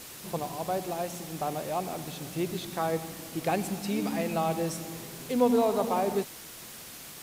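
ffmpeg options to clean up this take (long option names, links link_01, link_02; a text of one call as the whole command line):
ffmpeg -i in.wav -af "afftdn=noise_reduction=30:noise_floor=-45" out.wav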